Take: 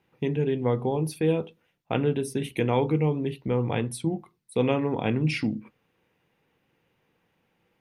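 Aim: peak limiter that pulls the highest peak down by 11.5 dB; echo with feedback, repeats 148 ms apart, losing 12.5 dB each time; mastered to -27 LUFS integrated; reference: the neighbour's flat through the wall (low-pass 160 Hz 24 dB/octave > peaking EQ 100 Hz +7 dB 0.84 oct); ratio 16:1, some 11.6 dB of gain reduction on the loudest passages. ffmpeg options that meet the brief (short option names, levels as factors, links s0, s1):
-af "acompressor=threshold=0.0316:ratio=16,alimiter=level_in=1.78:limit=0.0631:level=0:latency=1,volume=0.562,lowpass=f=160:w=0.5412,lowpass=f=160:w=1.3066,equalizer=f=100:t=o:w=0.84:g=7,aecho=1:1:148|296|444:0.237|0.0569|0.0137,volume=5.96"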